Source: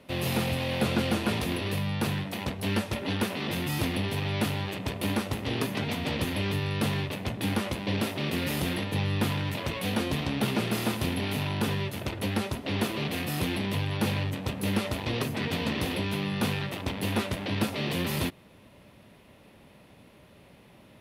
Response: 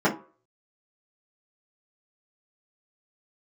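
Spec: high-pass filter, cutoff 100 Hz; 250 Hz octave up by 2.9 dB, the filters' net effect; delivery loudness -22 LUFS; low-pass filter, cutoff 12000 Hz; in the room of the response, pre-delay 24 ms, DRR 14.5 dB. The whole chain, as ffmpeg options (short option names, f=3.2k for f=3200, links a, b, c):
-filter_complex "[0:a]highpass=100,lowpass=12k,equalizer=f=250:t=o:g=4,asplit=2[a][b];[1:a]atrim=start_sample=2205,adelay=24[c];[b][c]afir=irnorm=-1:irlink=0,volume=-31dB[d];[a][d]amix=inputs=2:normalize=0,volume=6.5dB"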